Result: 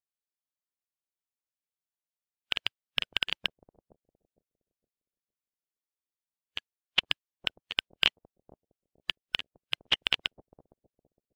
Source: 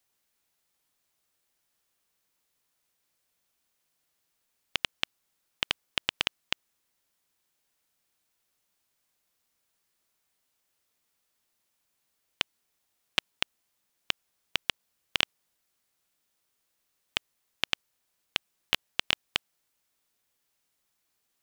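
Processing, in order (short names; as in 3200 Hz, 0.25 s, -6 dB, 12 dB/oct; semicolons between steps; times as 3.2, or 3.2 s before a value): time stretch by phase-locked vocoder 0.53×; analogue delay 0.461 s, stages 2048, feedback 39%, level -8.5 dB; spectral expander 1.5:1; gain +5.5 dB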